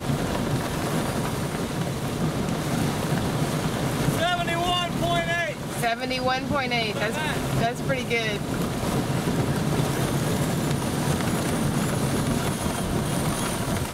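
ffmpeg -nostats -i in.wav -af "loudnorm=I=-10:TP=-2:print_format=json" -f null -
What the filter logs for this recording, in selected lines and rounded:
"input_i" : "-25.3",
"input_tp" : "-9.6",
"input_lra" : "1.6",
"input_thresh" : "-35.3",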